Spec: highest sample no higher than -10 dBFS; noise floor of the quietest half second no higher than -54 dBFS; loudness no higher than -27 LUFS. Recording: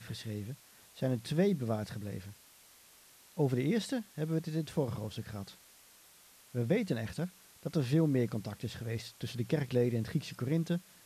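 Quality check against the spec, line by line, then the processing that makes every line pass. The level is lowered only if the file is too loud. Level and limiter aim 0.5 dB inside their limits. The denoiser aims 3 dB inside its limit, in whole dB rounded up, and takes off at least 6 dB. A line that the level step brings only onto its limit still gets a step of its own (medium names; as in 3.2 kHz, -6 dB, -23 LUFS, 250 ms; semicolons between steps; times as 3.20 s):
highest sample -17.0 dBFS: pass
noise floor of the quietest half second -60 dBFS: pass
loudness -34.5 LUFS: pass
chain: none needed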